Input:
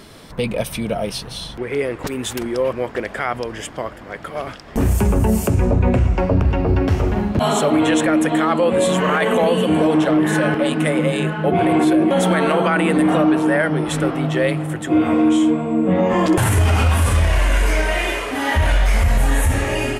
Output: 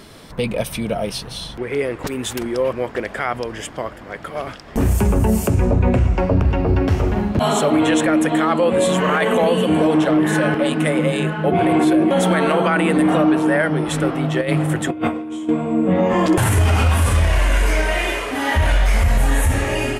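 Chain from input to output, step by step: 14.41–15.49 negative-ratio compressor -20 dBFS, ratio -0.5

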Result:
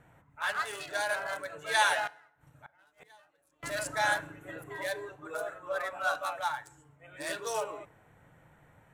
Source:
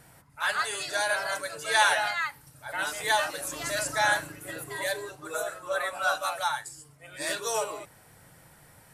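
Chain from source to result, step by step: Wiener smoothing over 9 samples; 2.07–3.63 flipped gate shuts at -30 dBFS, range -30 dB; FDN reverb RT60 0.8 s, low-frequency decay 1.25×, high-frequency decay 0.7×, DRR 18.5 dB; gain -3.5 dB

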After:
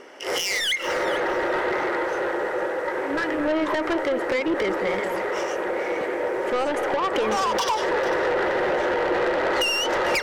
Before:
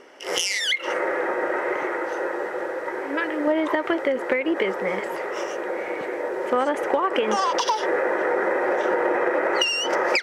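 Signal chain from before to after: soft clip -23 dBFS, distortion -10 dB; echo with dull and thin repeats by turns 0.224 s, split 1600 Hz, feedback 51%, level -8.5 dB; gain +3.5 dB

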